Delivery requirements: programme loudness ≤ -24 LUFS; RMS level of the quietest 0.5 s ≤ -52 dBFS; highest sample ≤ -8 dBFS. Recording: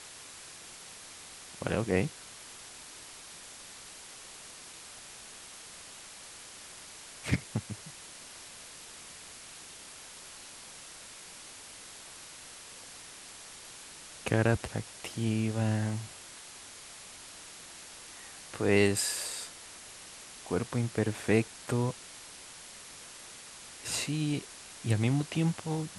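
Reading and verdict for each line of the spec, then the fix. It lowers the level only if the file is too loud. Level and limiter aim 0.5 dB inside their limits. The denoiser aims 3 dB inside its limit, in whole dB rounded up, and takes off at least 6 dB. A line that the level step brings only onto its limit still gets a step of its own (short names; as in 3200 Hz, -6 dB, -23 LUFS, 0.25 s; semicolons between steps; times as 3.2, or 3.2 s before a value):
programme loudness -36.0 LUFS: OK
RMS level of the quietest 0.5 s -49 dBFS: fail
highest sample -10.5 dBFS: OK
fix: denoiser 6 dB, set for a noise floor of -49 dBFS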